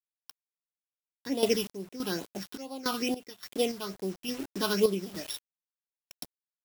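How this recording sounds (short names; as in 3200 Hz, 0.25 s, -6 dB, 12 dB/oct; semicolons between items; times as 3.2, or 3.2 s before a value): a buzz of ramps at a fixed pitch in blocks of 8 samples; phasing stages 6, 2.3 Hz, lowest notch 530–1900 Hz; a quantiser's noise floor 8-bit, dither none; random-step tremolo, depth 90%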